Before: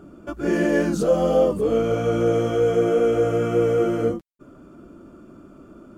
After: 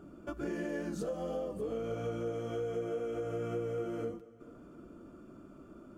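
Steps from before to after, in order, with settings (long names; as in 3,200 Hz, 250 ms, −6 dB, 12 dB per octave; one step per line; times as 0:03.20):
downward compressor 6 to 1, threshold −27 dBFS, peak gain reduction 13 dB
dense smooth reverb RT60 2.7 s, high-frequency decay 0.8×, DRR 15 dB
level −7.5 dB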